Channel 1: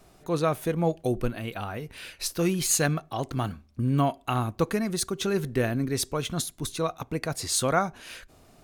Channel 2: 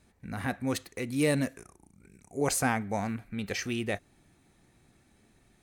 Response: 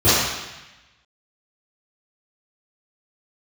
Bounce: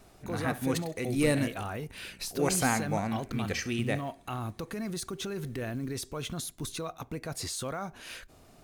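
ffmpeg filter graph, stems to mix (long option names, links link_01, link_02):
-filter_complex "[0:a]acompressor=threshold=-27dB:ratio=6,alimiter=level_in=2dB:limit=-24dB:level=0:latency=1:release=11,volume=-2dB,acrusher=bits=8:mode=log:mix=0:aa=0.000001,volume=-1dB[link_01];[1:a]volume=0dB,asplit=2[link_02][link_03];[link_03]volume=-16.5dB,aecho=0:1:67|134|201|268|335:1|0.36|0.13|0.0467|0.0168[link_04];[link_01][link_02][link_04]amix=inputs=3:normalize=0"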